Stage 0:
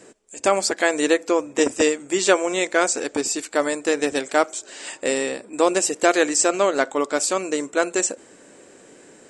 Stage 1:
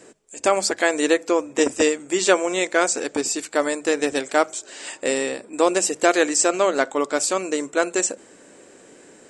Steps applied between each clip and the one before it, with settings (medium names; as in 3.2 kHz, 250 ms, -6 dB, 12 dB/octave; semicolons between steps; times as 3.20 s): hum notches 50/100/150/200 Hz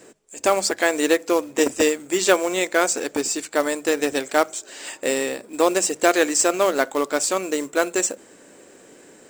short-mantissa float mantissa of 2-bit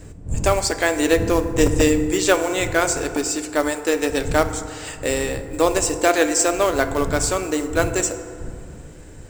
wind noise 100 Hz -30 dBFS; FDN reverb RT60 2.2 s, low-frequency decay 1.05×, high-frequency decay 0.4×, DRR 8.5 dB